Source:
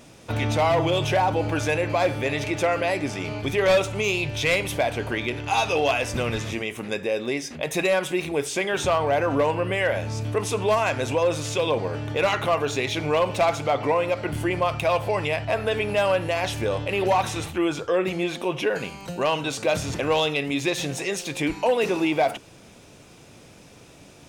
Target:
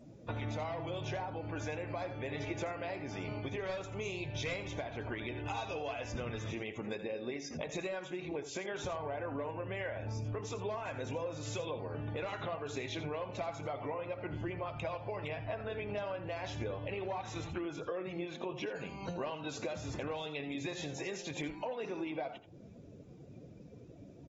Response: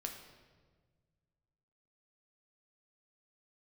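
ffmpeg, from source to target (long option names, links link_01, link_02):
-filter_complex "[0:a]afftdn=noise_reduction=20:noise_floor=-43,equalizer=frequency=2900:width=1.8:gain=-4,acompressor=threshold=-36dB:ratio=10,asplit=2[link_01][link_02];[link_02]aecho=0:1:82:0.237[link_03];[link_01][link_03]amix=inputs=2:normalize=0,volume=-1.5dB" -ar 48000 -c:a aac -b:a 24k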